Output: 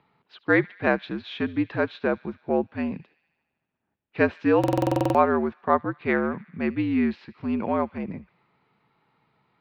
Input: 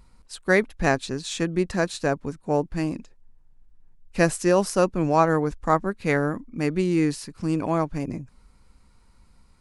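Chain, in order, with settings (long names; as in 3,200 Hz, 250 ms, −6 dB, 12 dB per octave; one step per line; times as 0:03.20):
single-sideband voice off tune −71 Hz 230–3,500 Hz
delay with a high-pass on its return 75 ms, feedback 71%, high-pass 2,300 Hz, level −18 dB
buffer that repeats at 0:04.59, samples 2,048, times 11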